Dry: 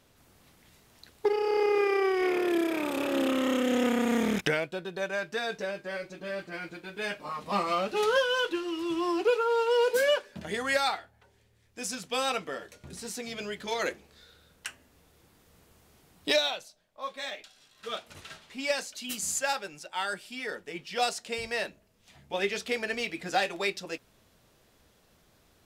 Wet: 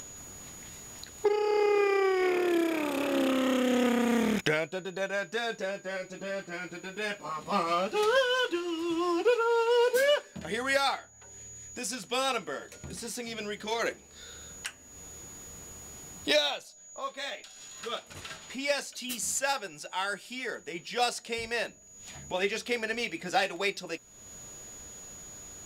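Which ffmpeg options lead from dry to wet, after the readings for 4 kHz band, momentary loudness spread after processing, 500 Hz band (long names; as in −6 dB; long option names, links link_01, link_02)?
0.0 dB, 18 LU, 0.0 dB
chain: -af "aeval=exprs='val(0)+0.00158*sin(2*PI*6800*n/s)':channel_layout=same,acompressor=mode=upward:threshold=-35dB:ratio=2.5"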